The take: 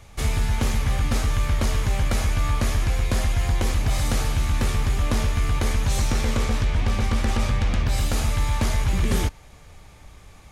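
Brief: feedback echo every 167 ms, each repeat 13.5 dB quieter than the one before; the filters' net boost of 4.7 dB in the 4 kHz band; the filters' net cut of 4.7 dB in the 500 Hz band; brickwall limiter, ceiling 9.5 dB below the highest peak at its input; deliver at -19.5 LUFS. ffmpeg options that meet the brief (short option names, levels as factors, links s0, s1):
-af "equalizer=f=500:t=o:g=-6,equalizer=f=4000:t=o:g=6,alimiter=limit=0.0891:level=0:latency=1,aecho=1:1:167|334:0.211|0.0444,volume=3.35"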